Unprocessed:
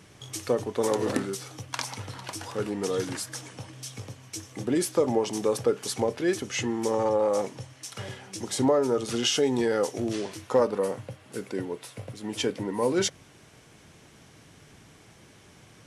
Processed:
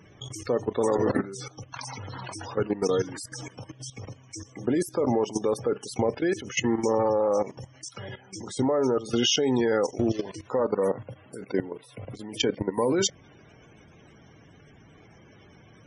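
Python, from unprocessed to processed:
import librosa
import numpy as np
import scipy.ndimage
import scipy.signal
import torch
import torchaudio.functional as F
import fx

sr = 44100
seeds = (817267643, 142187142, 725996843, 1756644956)

y = fx.spec_topn(x, sr, count=64)
y = fx.level_steps(y, sr, step_db=15)
y = y * librosa.db_to_amplitude(7.0)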